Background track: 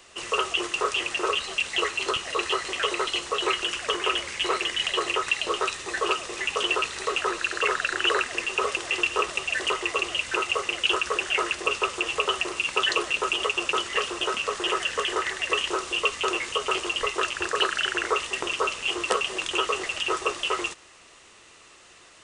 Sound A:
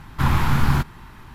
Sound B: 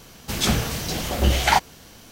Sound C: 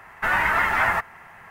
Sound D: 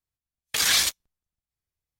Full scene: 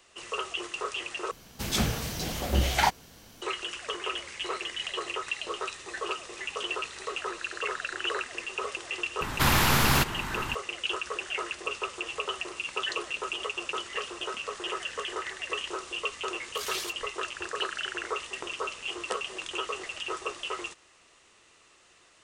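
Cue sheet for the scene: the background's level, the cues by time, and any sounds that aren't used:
background track -8 dB
1.31 s: replace with B -6 dB
9.21 s: add A -4.5 dB + spectrum-flattening compressor 2:1
16.01 s: add D -15 dB
not used: C

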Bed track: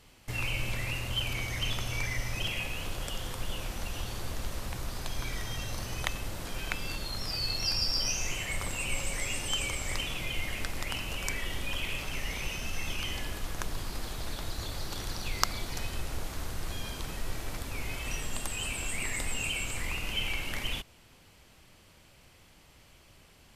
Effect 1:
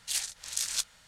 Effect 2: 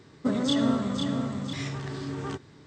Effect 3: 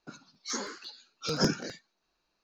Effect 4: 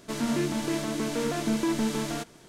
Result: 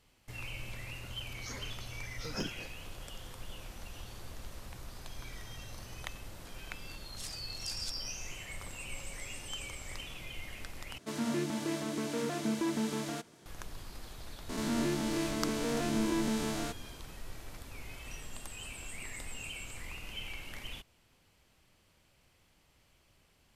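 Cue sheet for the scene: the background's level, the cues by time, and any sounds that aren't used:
bed track -10 dB
0.96 s: add 3 -11.5 dB
7.09 s: add 1 -14 dB
10.98 s: replace with 4 -6 dB + high-pass 81 Hz
14.49 s: add 4 -6.5 dB + reverse spectral sustain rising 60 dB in 1.12 s
not used: 2

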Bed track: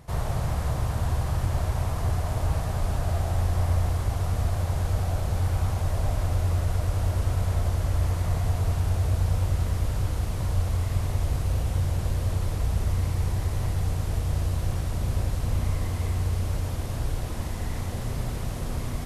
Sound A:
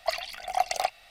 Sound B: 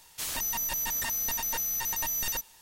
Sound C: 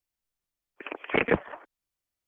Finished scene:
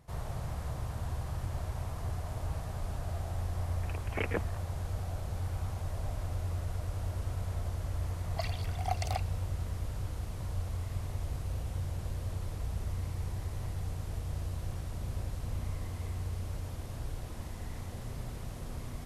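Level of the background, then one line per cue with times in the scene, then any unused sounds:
bed track -10.5 dB
3.03 s: add C -10.5 dB
8.31 s: add A -9.5 dB
not used: B

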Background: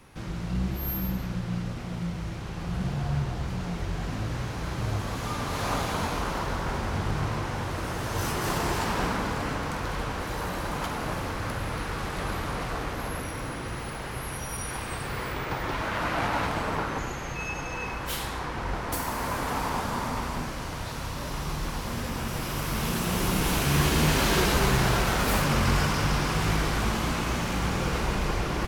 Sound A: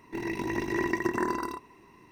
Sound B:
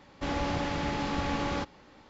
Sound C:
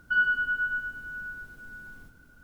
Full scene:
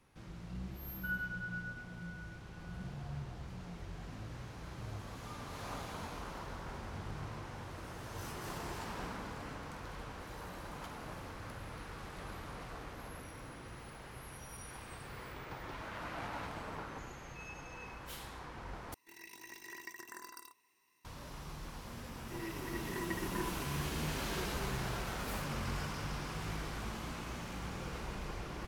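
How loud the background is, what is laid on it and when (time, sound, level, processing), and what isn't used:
background -15 dB
0.93 s: add C -15 dB + low-pass 2.8 kHz
18.94 s: replace with A -4 dB + pre-emphasis filter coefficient 0.97
22.17 s: add A -9 dB + endless flanger 7 ms -2.9 Hz
not used: B

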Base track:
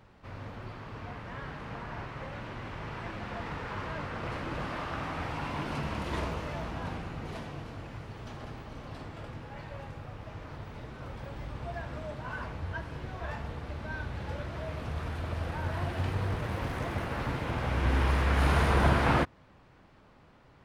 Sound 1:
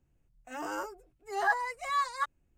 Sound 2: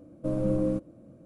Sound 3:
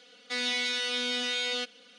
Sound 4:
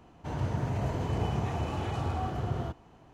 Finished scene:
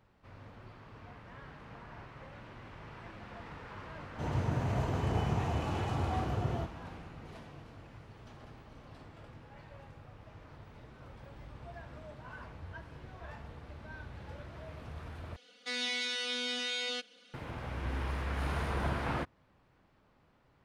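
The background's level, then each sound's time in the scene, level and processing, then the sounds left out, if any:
base track -9.5 dB
3.94 s: add 4 -1.5 dB
15.36 s: replace with 3 -5 dB
not used: 1, 2

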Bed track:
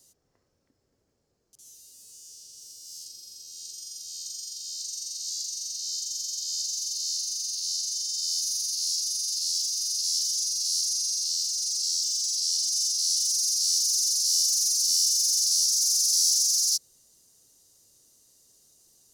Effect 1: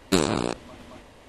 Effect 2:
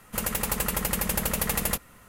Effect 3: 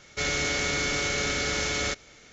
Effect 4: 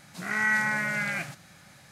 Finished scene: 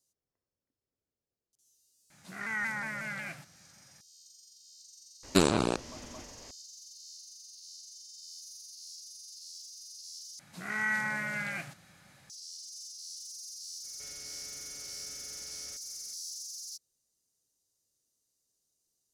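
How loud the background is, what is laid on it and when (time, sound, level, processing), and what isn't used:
bed track -19.5 dB
2.10 s: add 4 -9 dB + vibrato with a chosen wave saw down 5.5 Hz, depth 100 cents
5.23 s: add 1 -2.5 dB
10.39 s: replace with 4 -6 dB
13.83 s: add 3 -14.5 dB, fades 0.02 s + compression 2:1, threshold -47 dBFS
not used: 2

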